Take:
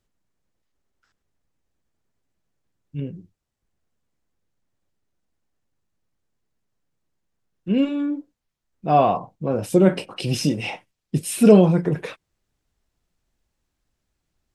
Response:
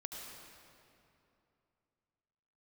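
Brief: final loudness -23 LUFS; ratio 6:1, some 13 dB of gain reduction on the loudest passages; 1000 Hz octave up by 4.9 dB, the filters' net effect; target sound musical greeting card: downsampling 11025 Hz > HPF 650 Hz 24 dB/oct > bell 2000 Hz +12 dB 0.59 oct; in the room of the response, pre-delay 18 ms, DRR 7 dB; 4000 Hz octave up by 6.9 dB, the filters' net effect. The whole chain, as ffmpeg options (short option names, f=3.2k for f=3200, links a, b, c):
-filter_complex "[0:a]equalizer=f=1k:t=o:g=8,equalizer=f=4k:t=o:g=7,acompressor=threshold=-20dB:ratio=6,asplit=2[a][b];[1:a]atrim=start_sample=2205,adelay=18[c];[b][c]afir=irnorm=-1:irlink=0,volume=-5.5dB[d];[a][d]amix=inputs=2:normalize=0,aresample=11025,aresample=44100,highpass=f=650:w=0.5412,highpass=f=650:w=1.3066,equalizer=f=2k:t=o:w=0.59:g=12,volume=5.5dB"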